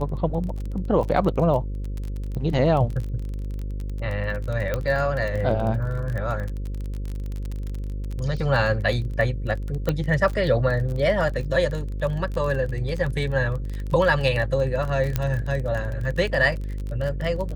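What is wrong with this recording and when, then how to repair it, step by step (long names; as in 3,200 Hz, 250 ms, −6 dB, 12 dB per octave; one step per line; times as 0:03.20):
mains buzz 50 Hz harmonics 11 −29 dBFS
surface crackle 26 per second −28 dBFS
0:04.74: click −12 dBFS
0:09.89: click −11 dBFS
0:15.16: click −9 dBFS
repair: click removal
hum removal 50 Hz, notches 11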